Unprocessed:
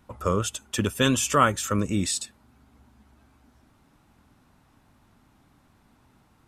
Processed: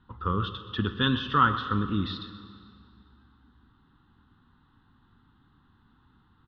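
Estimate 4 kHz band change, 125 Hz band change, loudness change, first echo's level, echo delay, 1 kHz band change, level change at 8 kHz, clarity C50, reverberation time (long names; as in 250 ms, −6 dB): −1.5 dB, −1.0 dB, −2.5 dB, −14.5 dB, 126 ms, −0.5 dB, below −40 dB, 10.0 dB, 2.3 s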